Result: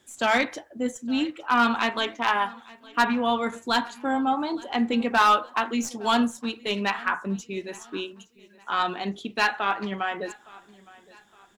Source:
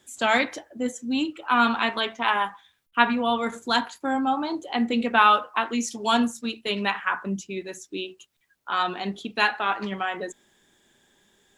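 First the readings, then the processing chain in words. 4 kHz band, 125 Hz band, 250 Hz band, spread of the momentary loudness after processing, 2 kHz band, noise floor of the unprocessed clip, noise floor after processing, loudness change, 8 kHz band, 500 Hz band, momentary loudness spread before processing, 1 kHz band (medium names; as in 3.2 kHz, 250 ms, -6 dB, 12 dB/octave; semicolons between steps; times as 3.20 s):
-1.5 dB, no reading, 0.0 dB, 13 LU, -1.0 dB, -68 dBFS, -57 dBFS, -1.0 dB, -1.0 dB, 0.0 dB, 11 LU, -0.5 dB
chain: tracing distortion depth 0.025 ms; treble shelf 3.8 kHz -2.5 dB; overload inside the chain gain 12.5 dB; on a send: feedback delay 864 ms, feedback 40%, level -22.5 dB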